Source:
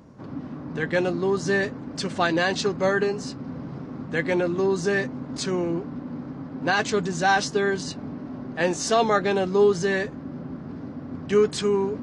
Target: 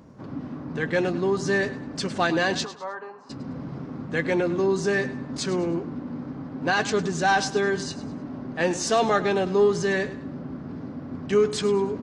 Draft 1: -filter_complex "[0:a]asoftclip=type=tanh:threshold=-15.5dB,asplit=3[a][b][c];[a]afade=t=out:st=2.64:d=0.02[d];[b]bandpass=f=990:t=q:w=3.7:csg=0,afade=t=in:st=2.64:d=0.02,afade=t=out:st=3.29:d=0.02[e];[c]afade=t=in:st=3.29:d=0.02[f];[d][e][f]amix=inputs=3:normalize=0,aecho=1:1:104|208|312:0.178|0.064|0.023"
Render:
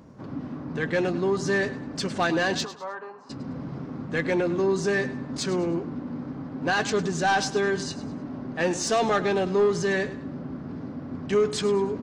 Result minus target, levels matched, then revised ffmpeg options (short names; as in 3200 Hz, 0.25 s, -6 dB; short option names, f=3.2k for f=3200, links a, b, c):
soft clip: distortion +9 dB
-filter_complex "[0:a]asoftclip=type=tanh:threshold=-9.5dB,asplit=3[a][b][c];[a]afade=t=out:st=2.64:d=0.02[d];[b]bandpass=f=990:t=q:w=3.7:csg=0,afade=t=in:st=2.64:d=0.02,afade=t=out:st=3.29:d=0.02[e];[c]afade=t=in:st=3.29:d=0.02[f];[d][e][f]amix=inputs=3:normalize=0,aecho=1:1:104|208|312:0.178|0.064|0.023"